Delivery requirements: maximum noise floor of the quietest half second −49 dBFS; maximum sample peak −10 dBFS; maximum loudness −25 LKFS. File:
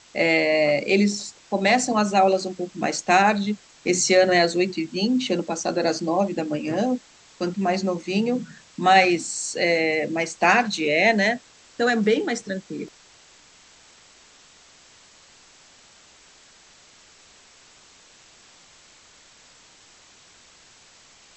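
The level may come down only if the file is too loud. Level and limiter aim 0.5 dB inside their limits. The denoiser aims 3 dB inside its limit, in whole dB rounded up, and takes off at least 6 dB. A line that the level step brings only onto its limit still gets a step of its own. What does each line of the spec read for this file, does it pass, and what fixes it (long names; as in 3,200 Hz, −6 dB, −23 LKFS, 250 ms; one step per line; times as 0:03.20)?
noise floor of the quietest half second −52 dBFS: in spec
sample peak −4.0 dBFS: out of spec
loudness −21.5 LKFS: out of spec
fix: level −4 dB
brickwall limiter −10.5 dBFS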